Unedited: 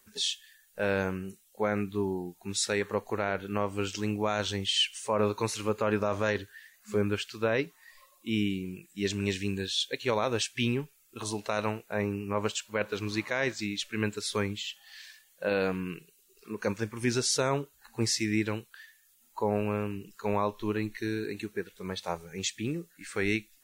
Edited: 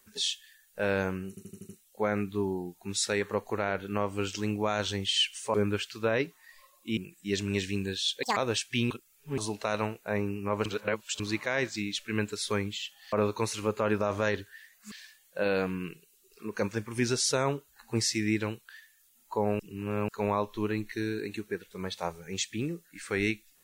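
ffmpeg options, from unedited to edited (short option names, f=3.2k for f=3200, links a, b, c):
-filter_complex "[0:a]asplit=18[a][b][c][d][e][f][g][h][i][j][k][l][m][n][o][p][q][r];[a]atrim=end=1.372[s];[b]atrim=start=1.288:end=1.372[t];[c]atrim=start=1.288:end=1.372[u];[d]atrim=start=1.288:end=1.372[v];[e]atrim=start=1.288:end=1.372[w];[f]atrim=start=1.288:end=5.142[x];[g]atrim=start=6.928:end=8.362[y];[h]atrim=start=8.688:end=9.954[z];[i]atrim=start=9.95:end=10.21,asetpts=PTS-STARTPTS,asetrate=84672,aresample=44100[aa];[j]atrim=start=10.206:end=10.752[ab];[k]atrim=start=10.748:end=11.222,asetpts=PTS-STARTPTS,areverse[ac];[l]atrim=start=11.218:end=12.502[ad];[m]atrim=start=12.498:end=13.042,asetpts=PTS-STARTPTS,areverse[ae];[n]atrim=start=13.038:end=14.972[af];[o]atrim=start=5.138:end=6.932[ag];[p]atrim=start=14.968:end=19.652[ah];[q]atrim=start=19.648:end=20.142,asetpts=PTS-STARTPTS,areverse[ai];[r]atrim=start=20.138[aj];[s][t]acrossfade=d=0.004:c1=hsin:c2=hsin[ak];[ak][u]acrossfade=d=0.004:c1=hsin:c2=hsin[al];[al][v]acrossfade=d=0.004:c1=hsin:c2=hsin[am];[am][w]acrossfade=d=0.004:c1=hsin:c2=hsin[an];[an][x]acrossfade=d=0.004:c1=hsin:c2=hsin[ao];[ao][y]acrossfade=d=0.004:c1=hsin:c2=hsin[ap];[ap][z]acrossfade=d=0.004:c1=hsin:c2=hsin[aq];[aq][aa]acrossfade=d=0.004:c1=hsin:c2=hsin[ar];[ar][ab]acrossfade=d=0.004:c1=hsin:c2=hsin[as];[as][ac]acrossfade=d=0.004:c1=hsin:c2=hsin[at];[at][ad]acrossfade=d=0.004:c1=hsin:c2=hsin[au];[au][ae]acrossfade=d=0.004:c1=hsin:c2=hsin[av];[av][af]acrossfade=d=0.004:c1=hsin:c2=hsin[aw];[aw][ag]acrossfade=d=0.004:c1=hsin:c2=hsin[ax];[ax][ah]acrossfade=d=0.004:c1=hsin:c2=hsin[ay];[ay][ai]acrossfade=d=0.004:c1=hsin:c2=hsin[az];[az][aj]acrossfade=d=0.004:c1=hsin:c2=hsin"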